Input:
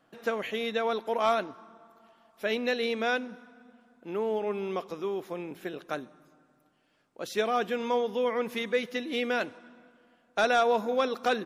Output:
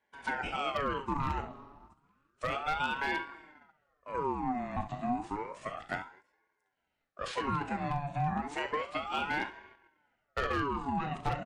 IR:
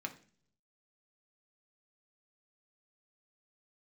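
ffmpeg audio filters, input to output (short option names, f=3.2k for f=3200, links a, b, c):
-af "acompressor=threshold=-28dB:ratio=10,asetrate=26990,aresample=44100,atempo=1.63392,highpass=210,aecho=1:1:36|66:0.316|0.251,aeval=exprs='0.0631*(abs(mod(val(0)/0.0631+3,4)-2)-1)':c=same,flanger=delay=2.1:depth=7.7:regen=86:speed=0.47:shape=triangular,agate=range=-11dB:threshold=-60dB:ratio=16:detection=peak,aeval=exprs='val(0)*sin(2*PI*850*n/s+850*0.5/0.31*sin(2*PI*0.31*n/s))':c=same,volume=7.5dB"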